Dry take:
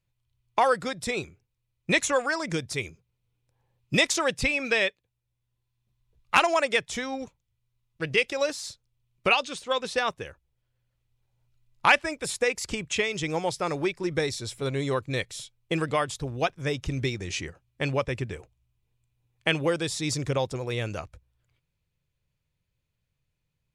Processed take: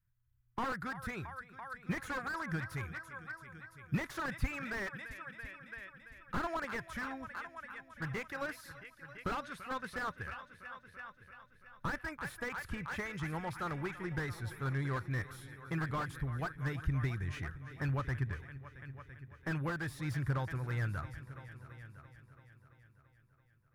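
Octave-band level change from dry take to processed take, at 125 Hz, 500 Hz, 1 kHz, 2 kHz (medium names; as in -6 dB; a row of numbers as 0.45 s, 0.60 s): -2.5 dB, -17.0 dB, -11.5 dB, -11.5 dB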